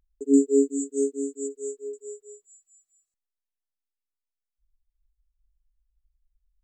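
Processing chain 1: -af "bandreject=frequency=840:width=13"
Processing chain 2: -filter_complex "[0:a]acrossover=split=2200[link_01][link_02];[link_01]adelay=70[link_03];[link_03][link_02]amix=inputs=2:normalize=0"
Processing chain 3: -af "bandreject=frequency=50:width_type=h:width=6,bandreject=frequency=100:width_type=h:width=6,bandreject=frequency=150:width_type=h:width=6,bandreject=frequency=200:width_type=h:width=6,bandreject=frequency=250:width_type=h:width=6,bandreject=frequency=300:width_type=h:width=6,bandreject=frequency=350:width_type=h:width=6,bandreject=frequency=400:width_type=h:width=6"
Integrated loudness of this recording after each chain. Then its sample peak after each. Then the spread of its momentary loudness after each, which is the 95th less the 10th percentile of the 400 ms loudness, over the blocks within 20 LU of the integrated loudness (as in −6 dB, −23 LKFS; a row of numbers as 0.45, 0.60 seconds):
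−25.0, −25.0, −25.0 LKFS; −8.0, −8.0, −8.5 dBFS; 20, 18, 20 LU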